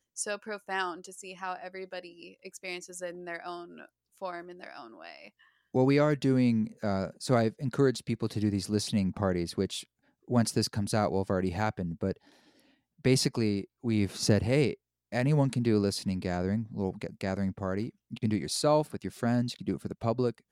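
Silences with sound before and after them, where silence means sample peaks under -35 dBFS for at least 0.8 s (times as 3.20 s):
12.12–13.05 s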